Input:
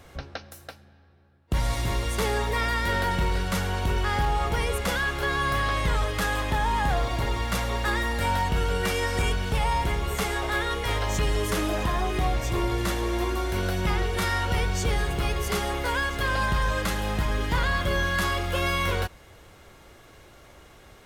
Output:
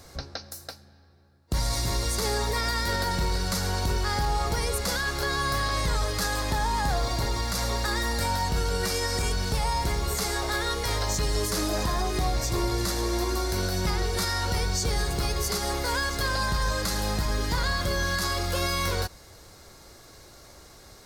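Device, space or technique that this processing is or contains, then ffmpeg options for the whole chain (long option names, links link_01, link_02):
over-bright horn tweeter: -af "highshelf=frequency=3700:width_type=q:width=3:gain=6,alimiter=limit=-17.5dB:level=0:latency=1:release=77"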